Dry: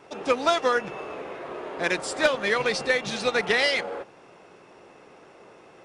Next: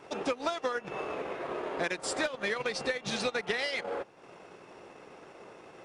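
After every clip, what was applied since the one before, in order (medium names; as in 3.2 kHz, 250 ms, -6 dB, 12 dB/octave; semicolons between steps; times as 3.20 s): compression 16:1, threshold -28 dBFS, peak gain reduction 13.5 dB; transient shaper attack +1 dB, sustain -7 dB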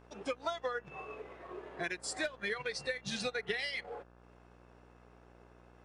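spectral noise reduction 11 dB; mains buzz 60 Hz, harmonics 29, -57 dBFS -4 dB/octave; trim -3.5 dB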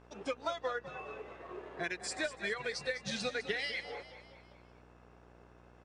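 low-pass 9.2 kHz 24 dB/octave; on a send: frequency-shifting echo 202 ms, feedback 51%, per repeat +35 Hz, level -13 dB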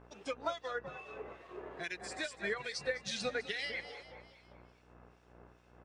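harmonic tremolo 2.4 Hz, crossover 2.2 kHz; trim +2 dB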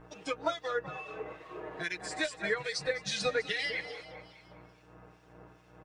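comb 6.4 ms, depth 78%; trim +3 dB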